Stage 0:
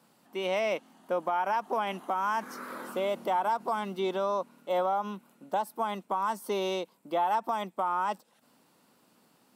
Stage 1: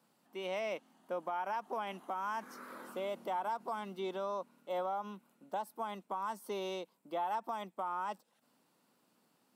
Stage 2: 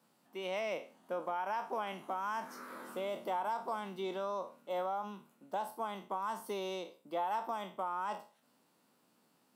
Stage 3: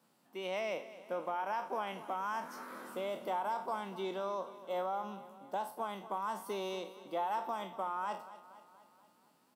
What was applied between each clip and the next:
high-pass 100 Hz; trim -8.5 dB
spectral sustain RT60 0.36 s
feedback delay 237 ms, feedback 57%, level -15.5 dB

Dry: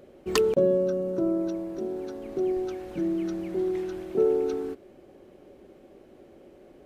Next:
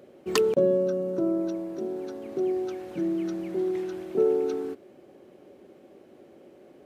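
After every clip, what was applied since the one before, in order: high-pass 120 Hz 12 dB/octave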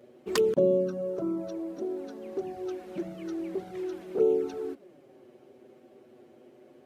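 touch-sensitive flanger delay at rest 9 ms, full sweep at -18.5 dBFS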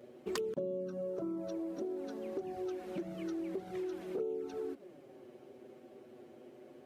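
compression 5:1, threshold -36 dBFS, peak gain reduction 15.5 dB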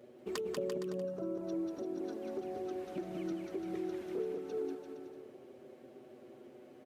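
bouncing-ball echo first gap 190 ms, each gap 0.8×, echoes 5; trim -2 dB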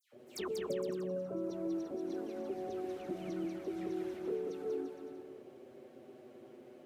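phase dispersion lows, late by 131 ms, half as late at 2.1 kHz

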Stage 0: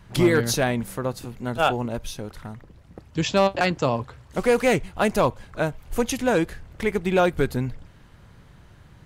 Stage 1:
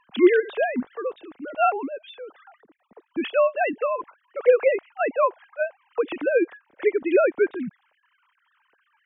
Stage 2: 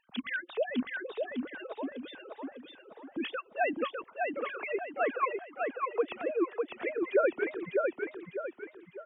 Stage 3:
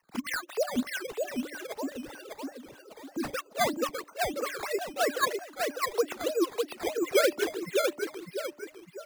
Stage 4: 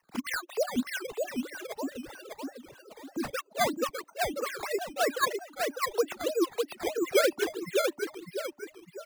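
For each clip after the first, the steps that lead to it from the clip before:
formants replaced by sine waves
harmonic-percussive separation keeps percussive; on a send: feedback delay 602 ms, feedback 40%, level -3.5 dB; on the sum: trim -5.5 dB
decimation with a swept rate 11×, swing 100% 3.1 Hz; de-hum 295.2 Hz, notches 2; trim +2.5 dB
reverb removal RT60 0.54 s

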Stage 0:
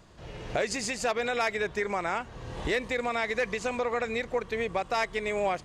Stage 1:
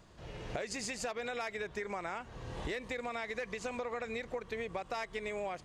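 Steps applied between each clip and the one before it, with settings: compression, threshold -31 dBFS, peak gain reduction 7.5 dB; trim -4 dB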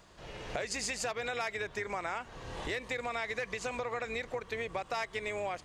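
octave divider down 2 oct, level -2 dB; bass shelf 340 Hz -9.5 dB; trim +4.5 dB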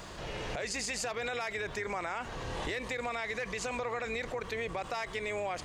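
peak limiter -28 dBFS, peak gain reduction 8.5 dB; level flattener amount 50%; trim +1 dB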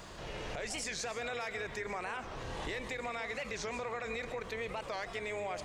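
reverberation RT60 0.95 s, pre-delay 95 ms, DRR 10 dB; warped record 45 rpm, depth 250 cents; trim -3.5 dB

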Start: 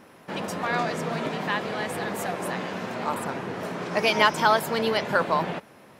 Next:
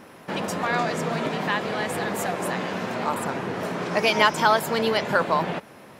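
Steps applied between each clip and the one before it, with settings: dynamic bell 7.2 kHz, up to +4 dB, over -57 dBFS, Q 7.9; in parallel at -3 dB: compression, threshold -32 dBFS, peak gain reduction 16.5 dB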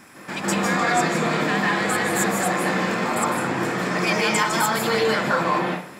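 peak limiter -15 dBFS, peak gain reduction 11.5 dB; hard clipper -17.5 dBFS, distortion -26 dB; reverberation RT60 0.45 s, pre-delay 149 ms, DRR -4 dB; trim +2.5 dB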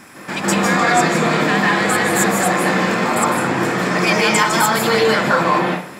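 trim +6 dB; MP3 192 kbps 48 kHz

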